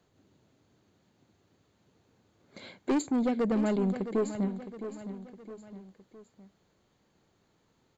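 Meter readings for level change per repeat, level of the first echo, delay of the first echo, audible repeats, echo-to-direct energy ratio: −6.5 dB, −11.0 dB, 663 ms, 3, −10.0 dB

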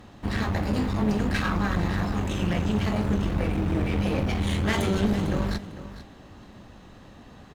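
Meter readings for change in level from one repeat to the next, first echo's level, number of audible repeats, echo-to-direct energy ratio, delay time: −15.5 dB, −14.0 dB, 2, −14.0 dB, 450 ms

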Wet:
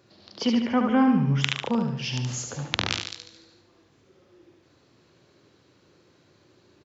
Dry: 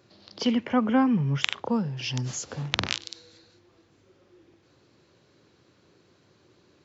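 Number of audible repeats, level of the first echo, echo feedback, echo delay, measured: 5, −5.0 dB, 47%, 73 ms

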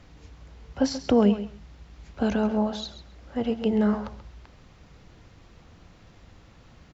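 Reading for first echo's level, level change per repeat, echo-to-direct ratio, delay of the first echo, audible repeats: −12.5 dB, −16.0 dB, −12.5 dB, 134 ms, 2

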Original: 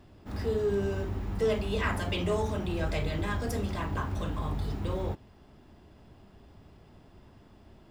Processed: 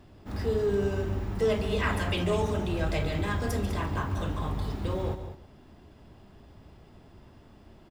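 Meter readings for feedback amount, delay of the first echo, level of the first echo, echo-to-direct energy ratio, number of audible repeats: repeats not evenly spaced, 141 ms, −13.5 dB, −9.5 dB, 3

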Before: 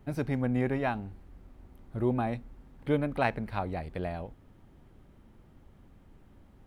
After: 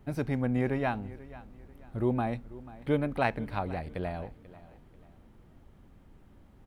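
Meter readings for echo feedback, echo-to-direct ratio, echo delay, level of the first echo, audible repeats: 33%, −18.0 dB, 489 ms, −18.5 dB, 2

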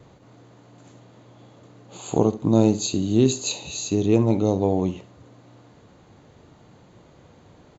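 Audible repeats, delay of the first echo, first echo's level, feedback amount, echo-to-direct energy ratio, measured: 2, 70 ms, −16.0 dB, 26%, −15.5 dB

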